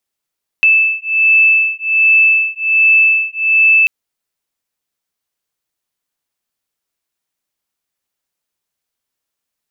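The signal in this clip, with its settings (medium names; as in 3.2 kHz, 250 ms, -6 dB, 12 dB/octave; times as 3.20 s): beating tones 2.63 kHz, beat 1.3 Hz, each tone -11.5 dBFS 3.24 s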